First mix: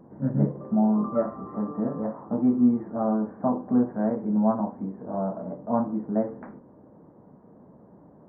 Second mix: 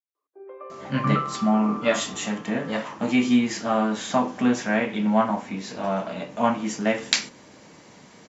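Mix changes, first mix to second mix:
speech: entry +0.70 s
master: remove Gaussian smoothing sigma 9.4 samples

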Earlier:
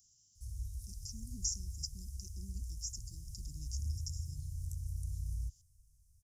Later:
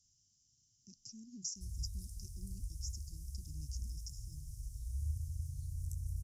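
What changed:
speech: add high-frequency loss of the air 79 metres
background: entry +1.20 s

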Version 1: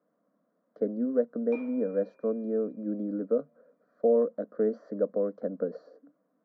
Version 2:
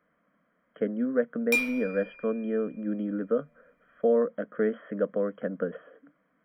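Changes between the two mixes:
speech: add linear-phase brick-wall low-pass 3,300 Hz
master: remove flat-topped band-pass 420 Hz, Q 0.65

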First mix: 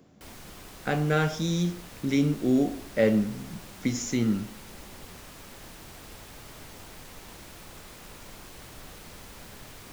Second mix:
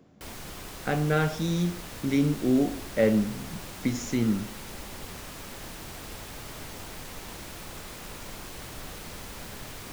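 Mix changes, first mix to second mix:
speech: add high-shelf EQ 4,100 Hz −6.5 dB
background +5.0 dB

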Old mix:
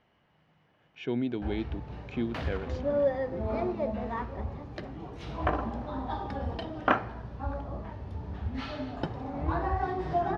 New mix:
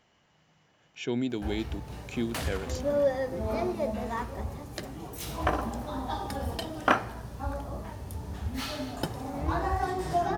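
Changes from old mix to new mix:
first sound: remove low-pass filter 10,000 Hz 24 dB per octave
master: remove high-frequency loss of the air 280 metres

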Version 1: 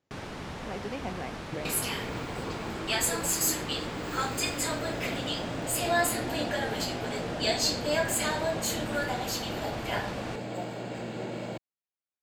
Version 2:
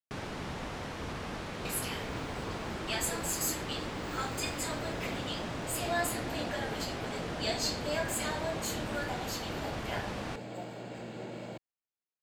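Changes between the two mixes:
speech: muted
second sound −6.0 dB

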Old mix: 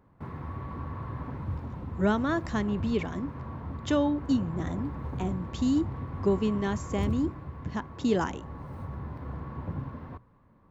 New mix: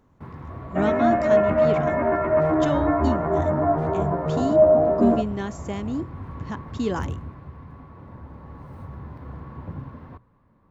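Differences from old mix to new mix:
speech: entry −1.25 s
second sound: unmuted

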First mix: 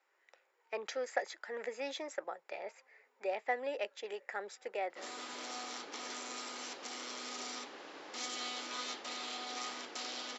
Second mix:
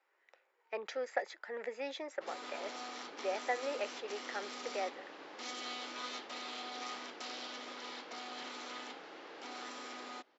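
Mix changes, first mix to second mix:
background: entry −2.75 s
master: add high-frequency loss of the air 95 metres

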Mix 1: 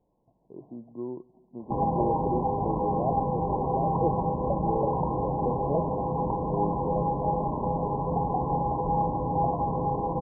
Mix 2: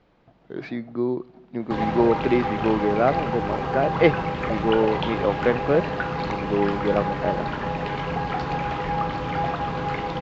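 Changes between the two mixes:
speech +11.0 dB
master: remove linear-phase brick-wall low-pass 1,100 Hz

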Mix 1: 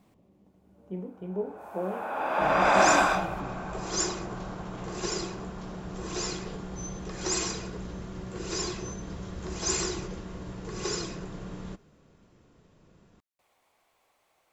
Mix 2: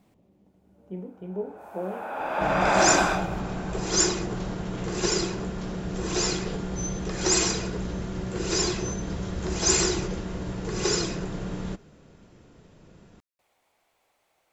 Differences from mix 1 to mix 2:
second sound +7.0 dB
master: add parametric band 1,100 Hz −5 dB 0.21 octaves

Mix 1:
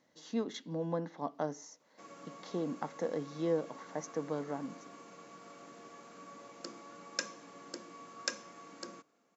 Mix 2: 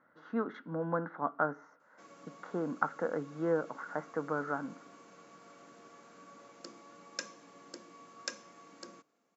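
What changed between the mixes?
speech: add low-pass with resonance 1,400 Hz, resonance Q 11
background −3.5 dB

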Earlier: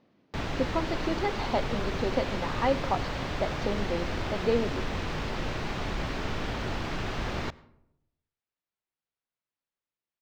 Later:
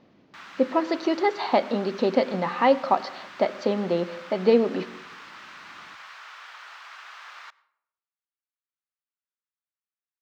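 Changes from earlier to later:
speech +7.5 dB
background: add four-pole ladder high-pass 1,000 Hz, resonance 40%

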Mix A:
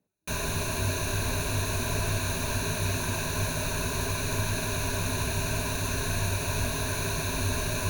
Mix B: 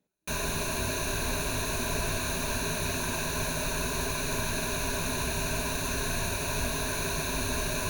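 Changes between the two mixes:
speech: remove low-pass filter 1,900 Hz
master: add parametric band 98 Hz −9.5 dB 0.56 octaves

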